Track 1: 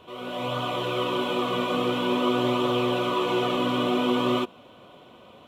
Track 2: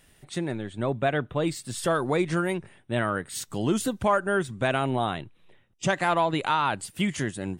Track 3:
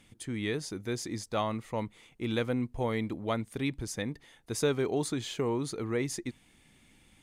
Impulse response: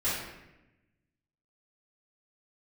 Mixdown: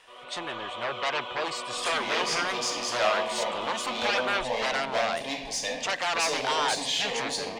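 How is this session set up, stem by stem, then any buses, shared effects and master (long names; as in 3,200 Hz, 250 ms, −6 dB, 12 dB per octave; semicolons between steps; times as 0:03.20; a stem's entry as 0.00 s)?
−6.5 dB, 0.00 s, no send, no processing
−11.0 dB, 0.00 s, no send, sine wavefolder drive 13 dB, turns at −11 dBFS
−5.5 dB, 1.65 s, send −5 dB, leveller curve on the samples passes 5; phaser with its sweep stopped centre 360 Hz, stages 6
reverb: on, RT60 0.95 s, pre-delay 3 ms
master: three-way crossover with the lows and the highs turned down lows −22 dB, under 520 Hz, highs −20 dB, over 6,700 Hz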